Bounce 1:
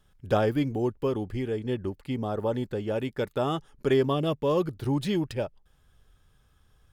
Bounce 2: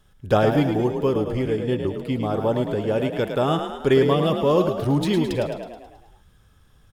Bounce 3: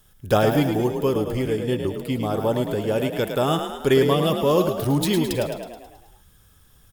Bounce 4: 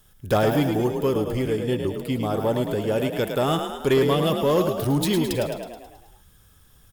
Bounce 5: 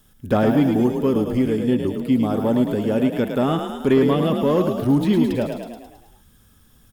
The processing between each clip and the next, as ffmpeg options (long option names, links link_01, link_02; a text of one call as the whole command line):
ffmpeg -i in.wav -filter_complex "[0:a]asplit=8[link_01][link_02][link_03][link_04][link_05][link_06][link_07][link_08];[link_02]adelay=107,afreqshift=37,volume=-7dB[link_09];[link_03]adelay=214,afreqshift=74,volume=-12.2dB[link_10];[link_04]adelay=321,afreqshift=111,volume=-17.4dB[link_11];[link_05]adelay=428,afreqshift=148,volume=-22.6dB[link_12];[link_06]adelay=535,afreqshift=185,volume=-27.8dB[link_13];[link_07]adelay=642,afreqshift=222,volume=-33dB[link_14];[link_08]adelay=749,afreqshift=259,volume=-38.2dB[link_15];[link_01][link_09][link_10][link_11][link_12][link_13][link_14][link_15]amix=inputs=8:normalize=0,volume=5.5dB" out.wav
ffmpeg -i in.wav -af "aemphasis=mode=production:type=50fm" out.wav
ffmpeg -i in.wav -af "asoftclip=type=tanh:threshold=-11.5dB" out.wav
ffmpeg -i in.wav -filter_complex "[0:a]acrossover=split=3000[link_01][link_02];[link_02]acompressor=threshold=-43dB:ratio=4:attack=1:release=60[link_03];[link_01][link_03]amix=inputs=2:normalize=0,equalizer=frequency=240:width_type=o:width=0.56:gain=11" out.wav